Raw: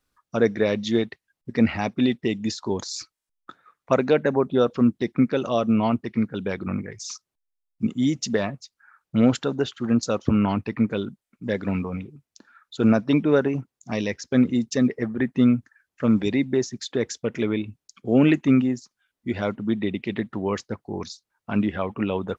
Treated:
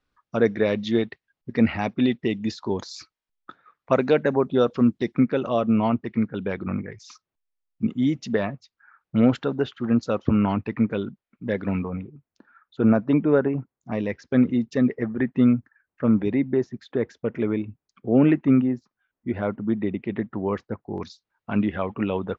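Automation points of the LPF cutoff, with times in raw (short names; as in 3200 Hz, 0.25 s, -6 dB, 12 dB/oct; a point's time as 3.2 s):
3900 Hz
from 3.95 s 6200 Hz
from 5.2 s 2900 Hz
from 11.88 s 1700 Hz
from 14.1 s 2500 Hz
from 15.53 s 1700 Hz
from 20.98 s 3400 Hz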